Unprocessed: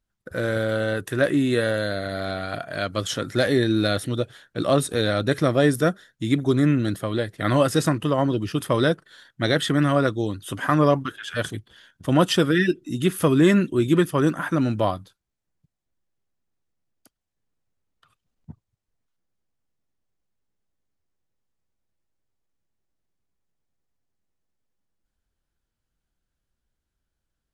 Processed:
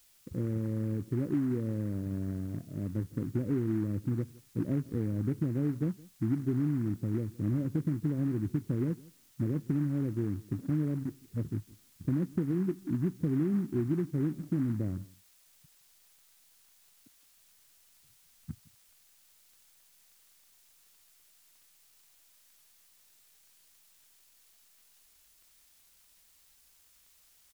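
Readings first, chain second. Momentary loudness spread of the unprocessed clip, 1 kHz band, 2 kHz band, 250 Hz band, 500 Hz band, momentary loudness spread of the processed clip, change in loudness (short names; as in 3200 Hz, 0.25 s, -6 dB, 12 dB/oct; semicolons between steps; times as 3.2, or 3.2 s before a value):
10 LU, -27.0 dB, -26.5 dB, -8.5 dB, -17.5 dB, 8 LU, -10.5 dB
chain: inverse Chebyshev low-pass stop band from 1100 Hz, stop band 60 dB; compressor, threshold -27 dBFS, peak gain reduction 12 dB; added noise blue -61 dBFS; echo 0.165 s -22.5 dB; noise-modulated delay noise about 1200 Hz, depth 0.031 ms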